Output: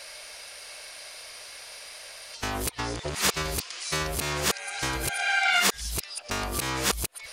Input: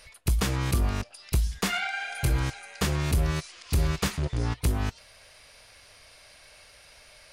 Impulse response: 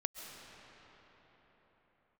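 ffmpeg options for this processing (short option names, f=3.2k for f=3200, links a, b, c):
-af "areverse,acompressor=threshold=-27dB:ratio=6,bass=f=250:g=-15,treble=f=4k:g=4,volume=8.5dB"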